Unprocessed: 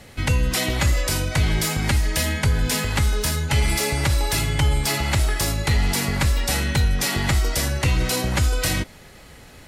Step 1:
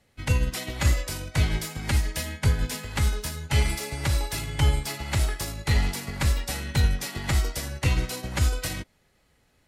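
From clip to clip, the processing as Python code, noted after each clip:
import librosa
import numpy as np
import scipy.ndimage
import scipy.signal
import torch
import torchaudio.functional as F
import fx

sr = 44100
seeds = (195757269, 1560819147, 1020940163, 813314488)

y = fx.upward_expand(x, sr, threshold_db=-29.0, expansion=2.5)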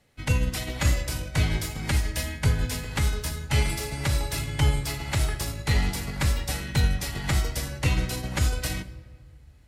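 y = fx.room_shoebox(x, sr, seeds[0], volume_m3=1500.0, walls='mixed', distance_m=0.43)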